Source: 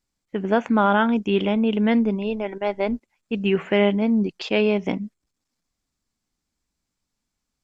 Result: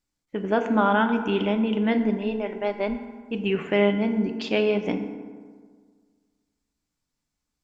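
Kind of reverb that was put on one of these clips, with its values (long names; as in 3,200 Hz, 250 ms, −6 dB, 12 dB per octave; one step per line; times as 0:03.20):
feedback delay network reverb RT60 1.7 s, low-frequency decay 1.1×, high-frequency decay 0.5×, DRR 6 dB
level −3 dB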